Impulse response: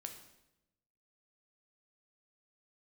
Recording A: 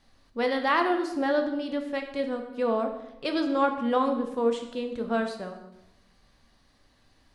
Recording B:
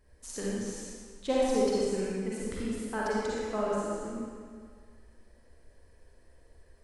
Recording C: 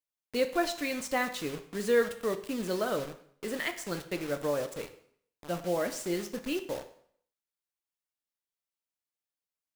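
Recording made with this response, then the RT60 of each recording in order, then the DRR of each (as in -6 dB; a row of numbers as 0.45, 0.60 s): A; 0.90, 1.9, 0.60 s; 4.5, -7.0, 7.5 dB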